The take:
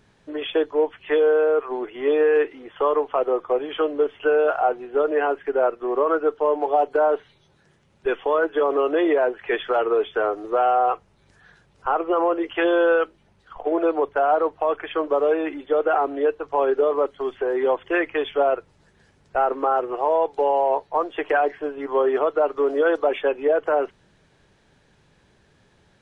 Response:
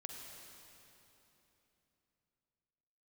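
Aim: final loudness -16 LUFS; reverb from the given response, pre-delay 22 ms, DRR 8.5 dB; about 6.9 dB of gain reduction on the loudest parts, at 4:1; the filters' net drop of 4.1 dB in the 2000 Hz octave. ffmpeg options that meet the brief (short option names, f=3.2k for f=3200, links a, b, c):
-filter_complex "[0:a]equalizer=f=2k:t=o:g=-6,acompressor=threshold=-24dB:ratio=4,asplit=2[a][b];[1:a]atrim=start_sample=2205,adelay=22[c];[b][c]afir=irnorm=-1:irlink=0,volume=-5.5dB[d];[a][d]amix=inputs=2:normalize=0,volume=11.5dB"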